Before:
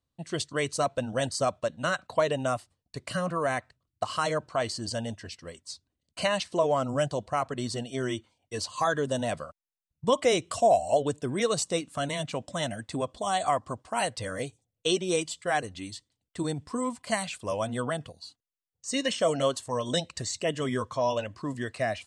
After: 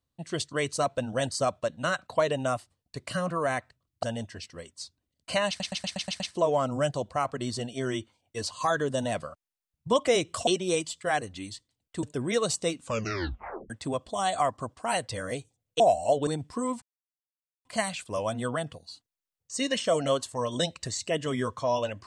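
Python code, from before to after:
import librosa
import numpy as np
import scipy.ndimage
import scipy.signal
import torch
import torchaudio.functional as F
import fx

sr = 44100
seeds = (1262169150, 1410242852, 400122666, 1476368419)

y = fx.edit(x, sr, fx.cut(start_s=4.03, length_s=0.89),
    fx.stutter(start_s=6.37, slice_s=0.12, count=7),
    fx.swap(start_s=10.64, length_s=0.47, other_s=14.88, other_length_s=1.56),
    fx.tape_stop(start_s=11.87, length_s=0.91),
    fx.insert_silence(at_s=16.99, length_s=0.83), tone=tone)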